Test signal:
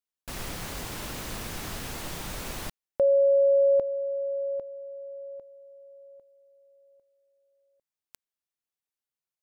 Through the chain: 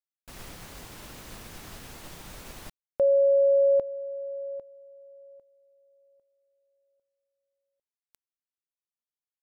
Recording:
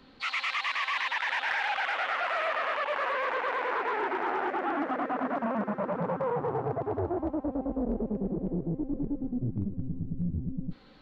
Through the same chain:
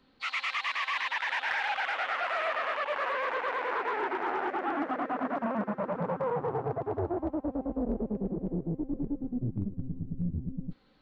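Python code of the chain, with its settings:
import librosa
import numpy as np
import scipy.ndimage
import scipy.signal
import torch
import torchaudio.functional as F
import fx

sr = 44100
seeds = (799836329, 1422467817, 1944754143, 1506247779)

y = fx.upward_expand(x, sr, threshold_db=-46.0, expansion=1.5)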